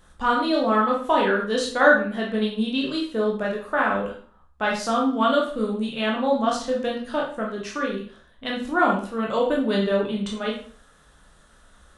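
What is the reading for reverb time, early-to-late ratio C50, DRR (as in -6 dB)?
0.45 s, 5.5 dB, -2.5 dB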